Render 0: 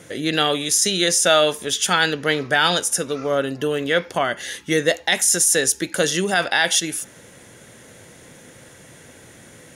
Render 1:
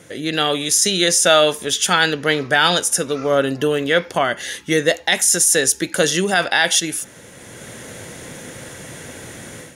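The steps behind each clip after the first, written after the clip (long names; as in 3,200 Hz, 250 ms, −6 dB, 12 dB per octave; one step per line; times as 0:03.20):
automatic gain control gain up to 11 dB
level −1 dB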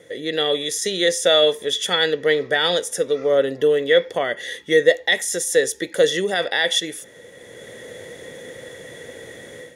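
hollow resonant body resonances 480/1,900/3,400 Hz, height 15 dB, ringing for 20 ms
level −10.5 dB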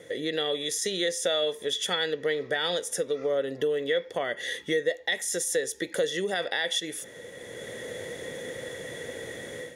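downward compressor 2.5 to 1, threshold −29 dBFS, peak gain reduction 14 dB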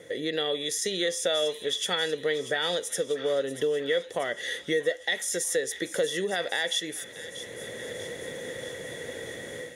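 delay with a high-pass on its return 637 ms, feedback 66%, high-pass 1,600 Hz, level −13 dB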